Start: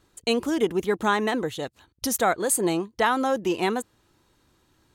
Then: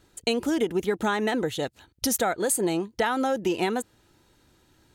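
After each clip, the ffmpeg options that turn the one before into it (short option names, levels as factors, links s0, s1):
-af "bandreject=f=1100:w=5.6,acompressor=threshold=0.0631:ratio=6,volume=1.41"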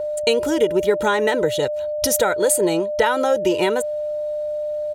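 -af "aeval=exprs='val(0)+0.0398*sin(2*PI*600*n/s)':c=same,aecho=1:1:2.1:0.53,volume=1.78"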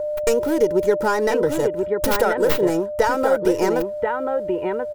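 -filter_complex "[0:a]acrossover=split=2100[s0][s1];[s0]aecho=1:1:1034:0.596[s2];[s1]aeval=exprs='abs(val(0))':c=same[s3];[s2][s3]amix=inputs=2:normalize=0"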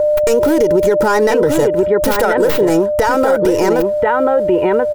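-af "alimiter=level_in=6.31:limit=0.891:release=50:level=0:latency=1,volume=0.631"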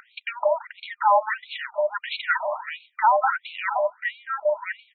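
-af "afftfilt=real='re*between(b*sr/1024,810*pow(3100/810,0.5+0.5*sin(2*PI*1.5*pts/sr))/1.41,810*pow(3100/810,0.5+0.5*sin(2*PI*1.5*pts/sr))*1.41)':imag='im*between(b*sr/1024,810*pow(3100/810,0.5+0.5*sin(2*PI*1.5*pts/sr))/1.41,810*pow(3100/810,0.5+0.5*sin(2*PI*1.5*pts/sr))*1.41)':win_size=1024:overlap=0.75"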